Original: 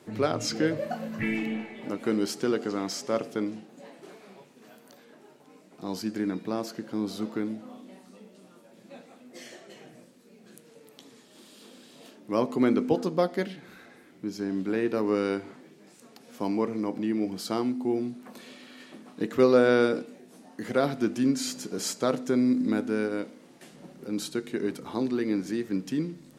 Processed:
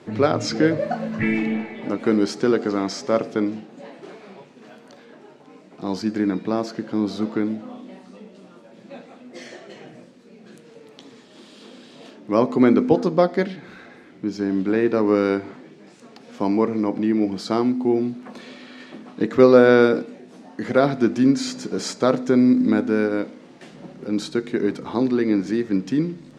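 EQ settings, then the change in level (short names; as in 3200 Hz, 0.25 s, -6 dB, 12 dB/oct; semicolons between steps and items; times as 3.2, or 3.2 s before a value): dynamic EQ 2900 Hz, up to -6 dB, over -58 dBFS, Q 5.3; air absorption 93 m; +8.0 dB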